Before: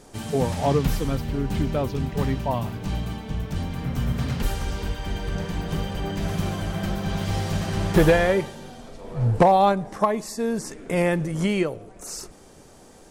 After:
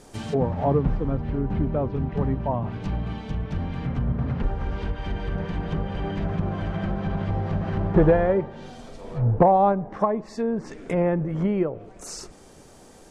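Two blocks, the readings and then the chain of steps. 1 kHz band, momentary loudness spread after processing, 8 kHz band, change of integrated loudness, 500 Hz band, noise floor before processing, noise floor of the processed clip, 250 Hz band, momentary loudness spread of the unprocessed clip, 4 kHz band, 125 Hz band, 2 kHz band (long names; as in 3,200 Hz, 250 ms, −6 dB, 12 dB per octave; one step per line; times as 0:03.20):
−1.0 dB, 12 LU, can't be measured, −0.5 dB, 0.0 dB, −49 dBFS, −49 dBFS, 0.0 dB, 12 LU, −10.0 dB, 0.0 dB, −7.0 dB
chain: treble cut that deepens with the level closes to 1,100 Hz, closed at −21 dBFS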